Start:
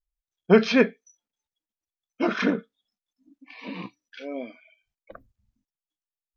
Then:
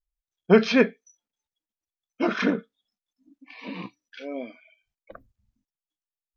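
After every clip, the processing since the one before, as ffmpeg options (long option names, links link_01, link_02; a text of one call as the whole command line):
ffmpeg -i in.wav -af anull out.wav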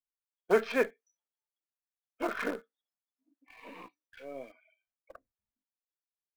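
ffmpeg -i in.wav -filter_complex "[0:a]acrossover=split=350 2300:gain=0.0794 1 0.224[link_01][link_02][link_03];[link_01][link_02][link_03]amix=inputs=3:normalize=0,asplit=2[link_04][link_05];[link_05]acrusher=bits=5:dc=4:mix=0:aa=0.000001,volume=-9dB[link_06];[link_04][link_06]amix=inputs=2:normalize=0,volume=-7.5dB" out.wav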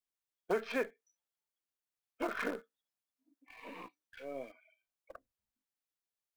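ffmpeg -i in.wav -af "acompressor=threshold=-33dB:ratio=2.5" out.wav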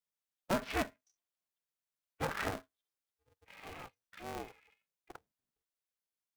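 ffmpeg -i in.wav -af "aeval=exprs='val(0)*sgn(sin(2*PI*190*n/s))':channel_layout=same" out.wav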